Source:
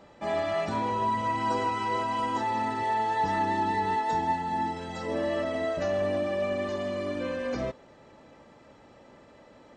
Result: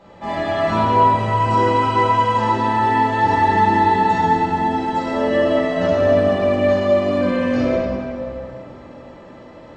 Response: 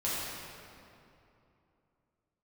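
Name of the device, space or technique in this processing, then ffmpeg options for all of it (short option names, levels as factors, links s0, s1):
swimming-pool hall: -filter_complex "[1:a]atrim=start_sample=2205[s0];[0:a][s0]afir=irnorm=-1:irlink=0,highshelf=f=5800:g=-7.5,volume=1.68"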